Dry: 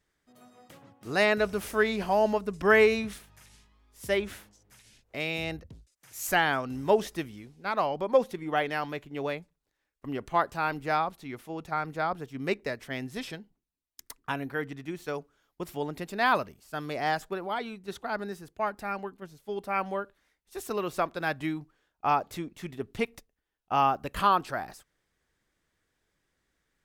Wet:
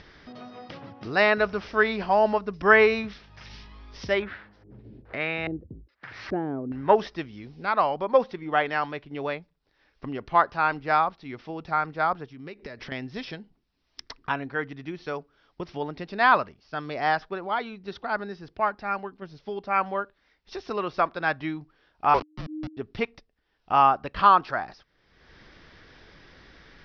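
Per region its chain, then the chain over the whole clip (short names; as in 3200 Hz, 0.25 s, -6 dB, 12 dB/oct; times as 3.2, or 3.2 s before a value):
4.22–6.95 HPF 48 Hz + bell 4200 Hz +8 dB 0.94 oct + LFO low-pass square 1.2 Hz 350–1700 Hz
12.25–12.92 notch 670 Hz + compressor 5:1, threshold -44 dBFS
22.14–22.77 level-crossing sampler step -29 dBFS + frequency shift -310 Hz
whole clip: steep low-pass 5600 Hz 96 dB/oct; dynamic EQ 1200 Hz, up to +7 dB, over -38 dBFS, Q 0.8; upward compressor, threshold -30 dBFS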